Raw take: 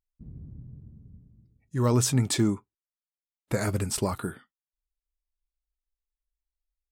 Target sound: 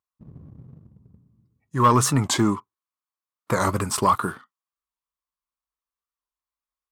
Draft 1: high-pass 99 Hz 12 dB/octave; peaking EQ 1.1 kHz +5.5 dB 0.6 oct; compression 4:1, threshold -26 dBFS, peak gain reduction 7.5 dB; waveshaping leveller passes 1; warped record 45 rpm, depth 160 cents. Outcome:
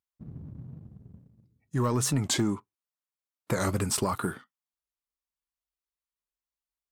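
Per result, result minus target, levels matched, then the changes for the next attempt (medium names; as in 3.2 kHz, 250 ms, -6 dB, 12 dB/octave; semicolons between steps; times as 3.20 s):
compression: peak gain reduction +7.5 dB; 1 kHz band -7.0 dB
remove: compression 4:1, threshold -26 dBFS, peak gain reduction 7.5 dB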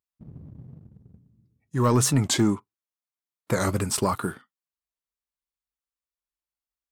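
1 kHz band -6.5 dB
change: peaking EQ 1.1 kHz +17 dB 0.6 oct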